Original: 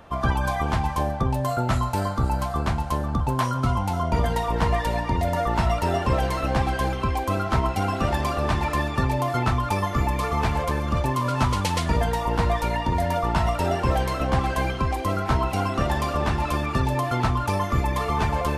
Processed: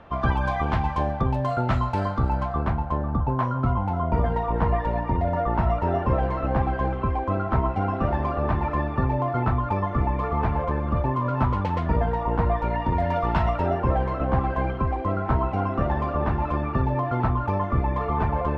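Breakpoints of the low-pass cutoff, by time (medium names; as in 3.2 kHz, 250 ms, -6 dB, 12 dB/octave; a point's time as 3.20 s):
2.09 s 3 kHz
2.85 s 1.4 kHz
12.57 s 1.4 kHz
13.35 s 2.9 kHz
13.79 s 1.4 kHz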